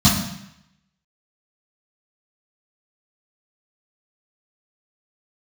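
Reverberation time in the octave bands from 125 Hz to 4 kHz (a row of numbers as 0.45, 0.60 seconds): 0.90, 0.80, 0.75, 0.85, 0.90, 0.80 seconds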